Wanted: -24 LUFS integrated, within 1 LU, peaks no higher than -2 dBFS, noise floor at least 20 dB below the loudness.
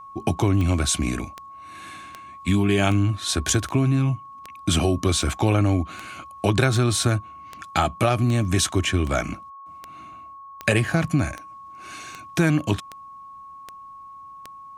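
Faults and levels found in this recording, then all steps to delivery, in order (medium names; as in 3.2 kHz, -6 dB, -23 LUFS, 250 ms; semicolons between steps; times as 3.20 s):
clicks found 19; steady tone 1.1 kHz; tone level -39 dBFS; loudness -22.5 LUFS; peak level -3.0 dBFS; loudness target -24.0 LUFS
-> de-click; band-stop 1.1 kHz, Q 30; trim -1.5 dB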